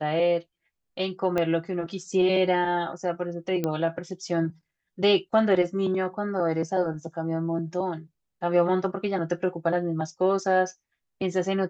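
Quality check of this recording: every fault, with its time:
1.38 s: pop -14 dBFS
3.64 s: pop -14 dBFS

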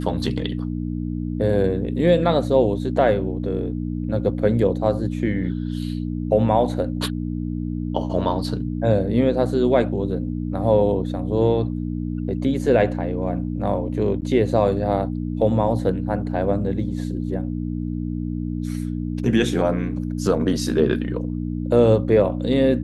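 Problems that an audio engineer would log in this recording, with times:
hum 60 Hz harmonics 5 -26 dBFS
14.21–14.22 s: dropout 9.7 ms

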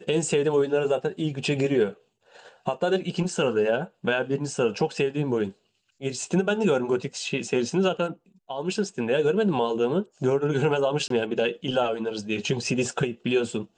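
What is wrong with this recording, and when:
11.08–11.10 s: dropout 23 ms

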